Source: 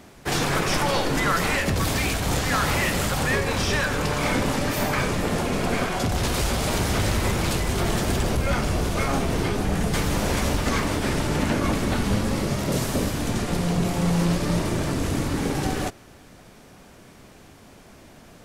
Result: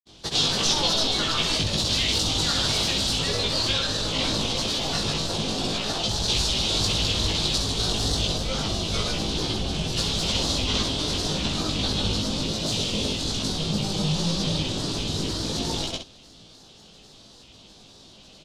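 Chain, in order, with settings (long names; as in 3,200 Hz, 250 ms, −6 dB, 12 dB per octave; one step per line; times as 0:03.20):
low-pass filter 5,500 Hz 12 dB per octave
high shelf with overshoot 2,700 Hz +10.5 dB, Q 3
granular cloud, pitch spread up and down by 3 semitones
on a send: ambience of single reflections 19 ms −3 dB, 66 ms −7 dB
on the sum: level −5.5 dB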